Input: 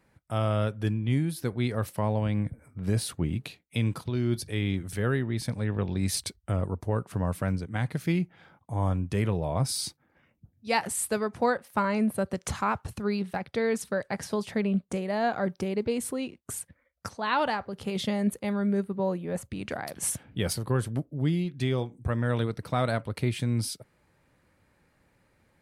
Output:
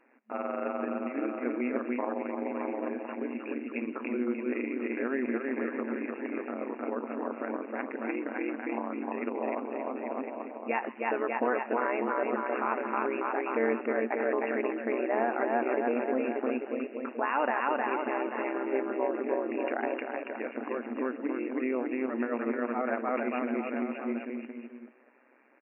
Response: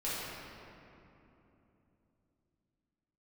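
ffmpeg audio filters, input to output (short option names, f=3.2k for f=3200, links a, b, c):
-filter_complex "[0:a]asplit=2[a][b];[b]aecho=0:1:310|589|840.1|1066|1269:0.631|0.398|0.251|0.158|0.1[c];[a][c]amix=inputs=2:normalize=0,acompressor=threshold=-25dB:ratio=6,alimiter=limit=-23.5dB:level=0:latency=1:release=33,tremolo=f=130:d=0.824,afftfilt=real='re*between(b*sr/4096,220,2800)':imag='im*between(b*sr/4096,220,2800)':win_size=4096:overlap=0.75,asplit=2[d][e];[e]asplit=2[f][g];[f]adelay=130,afreqshift=140,volume=-21dB[h];[g]adelay=260,afreqshift=280,volume=-30.6dB[i];[h][i]amix=inputs=2:normalize=0[j];[d][j]amix=inputs=2:normalize=0,volume=7.5dB"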